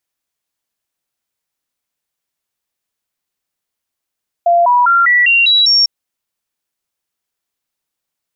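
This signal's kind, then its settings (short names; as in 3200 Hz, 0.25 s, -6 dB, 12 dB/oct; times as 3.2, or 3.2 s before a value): stepped sine 690 Hz up, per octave 2, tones 7, 0.20 s, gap 0.00 s -7 dBFS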